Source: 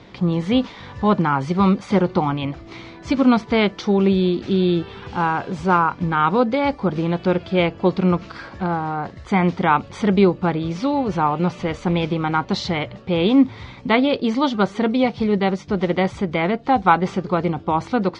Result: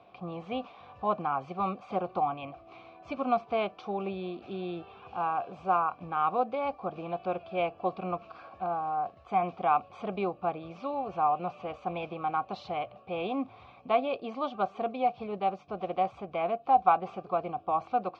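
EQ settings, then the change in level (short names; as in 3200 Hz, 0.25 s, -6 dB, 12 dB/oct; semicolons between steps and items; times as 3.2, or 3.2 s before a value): vowel filter a; bell 62 Hz +13 dB 2.5 oct; 0.0 dB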